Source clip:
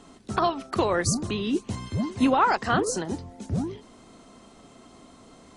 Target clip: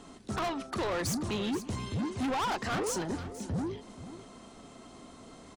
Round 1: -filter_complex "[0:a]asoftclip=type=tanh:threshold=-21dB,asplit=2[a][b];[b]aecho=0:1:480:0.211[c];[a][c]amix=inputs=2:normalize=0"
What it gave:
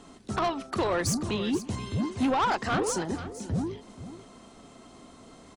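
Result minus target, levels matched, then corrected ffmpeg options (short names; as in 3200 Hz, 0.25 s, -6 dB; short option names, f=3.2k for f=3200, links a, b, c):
soft clip: distortion -6 dB
-filter_complex "[0:a]asoftclip=type=tanh:threshold=-29dB,asplit=2[a][b];[b]aecho=0:1:480:0.211[c];[a][c]amix=inputs=2:normalize=0"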